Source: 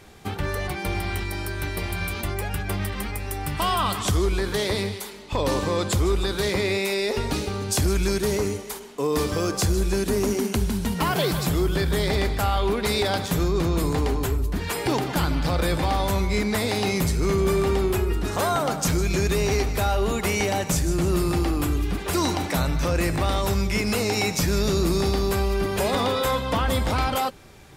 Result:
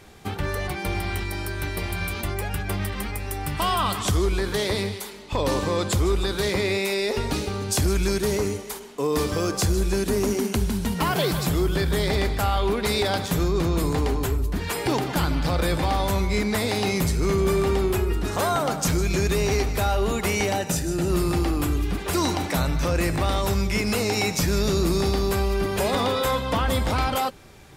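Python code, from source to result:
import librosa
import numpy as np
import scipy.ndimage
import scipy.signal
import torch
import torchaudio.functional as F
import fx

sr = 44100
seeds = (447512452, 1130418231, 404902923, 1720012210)

y = fx.notch_comb(x, sr, f0_hz=1100.0, at=(20.56, 21.1))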